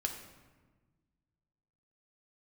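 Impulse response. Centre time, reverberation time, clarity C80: 26 ms, 1.4 s, 8.5 dB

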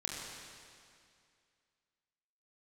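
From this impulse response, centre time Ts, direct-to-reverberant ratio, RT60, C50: 124 ms, -3.0 dB, 2.3 s, -0.5 dB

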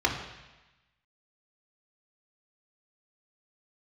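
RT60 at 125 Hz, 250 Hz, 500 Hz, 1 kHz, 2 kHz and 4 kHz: 1.2 s, 1.1 s, 1.0 s, 1.1 s, 1.2 s, 1.2 s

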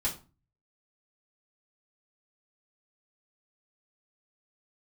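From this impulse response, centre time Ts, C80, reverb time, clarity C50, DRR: 17 ms, 17.5 dB, 0.35 s, 11.5 dB, -5.5 dB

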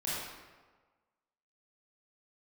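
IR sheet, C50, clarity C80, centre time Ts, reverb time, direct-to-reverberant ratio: -3.5 dB, 0.0 dB, 103 ms, 1.4 s, -9.0 dB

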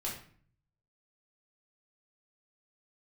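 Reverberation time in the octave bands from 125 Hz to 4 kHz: 1.0 s, 0.70 s, 0.50 s, 0.50 s, 0.50 s, 0.40 s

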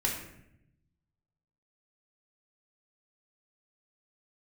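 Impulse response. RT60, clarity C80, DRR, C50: 0.80 s, 7.0 dB, -3.0 dB, 4.0 dB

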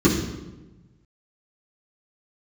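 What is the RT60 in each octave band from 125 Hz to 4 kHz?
1.7 s, 1.4 s, 1.2 s, 1.0 s, 0.85 s, 0.80 s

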